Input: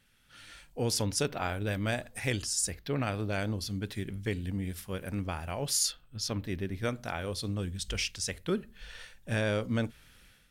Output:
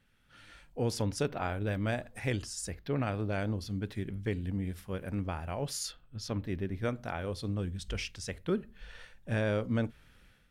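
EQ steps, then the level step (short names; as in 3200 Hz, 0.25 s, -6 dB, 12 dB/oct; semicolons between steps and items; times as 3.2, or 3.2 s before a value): high shelf 2900 Hz -11 dB; 0.0 dB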